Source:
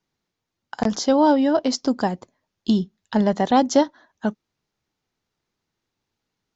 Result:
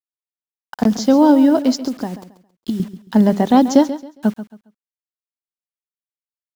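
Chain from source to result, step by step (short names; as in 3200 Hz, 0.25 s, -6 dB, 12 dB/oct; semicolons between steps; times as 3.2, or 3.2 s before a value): dynamic EQ 240 Hz, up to +8 dB, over -32 dBFS, Q 1; 1.78–2.8 compressor 8:1, threshold -20 dBFS, peak gain reduction 13 dB; bit-crush 7-bit; feedback echo 0.136 s, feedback 27%, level -13.5 dB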